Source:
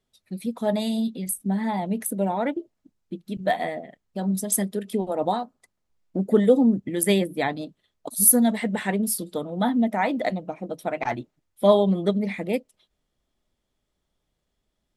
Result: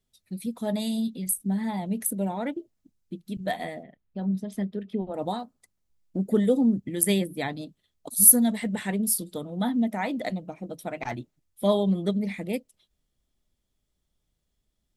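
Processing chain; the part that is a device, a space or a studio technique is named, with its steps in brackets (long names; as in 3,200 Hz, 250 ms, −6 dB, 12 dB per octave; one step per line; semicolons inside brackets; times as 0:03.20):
0:03.83–0:05.14: high-frequency loss of the air 320 metres
smiley-face EQ (low-shelf EQ 200 Hz +5.5 dB; parametric band 780 Hz −4 dB 2.9 octaves; high-shelf EQ 5,300 Hz +6.5 dB)
level −3.5 dB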